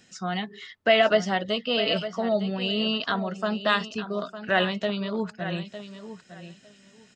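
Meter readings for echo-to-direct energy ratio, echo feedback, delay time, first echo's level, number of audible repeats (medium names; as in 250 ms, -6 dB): -12.0 dB, 18%, 906 ms, -12.0 dB, 2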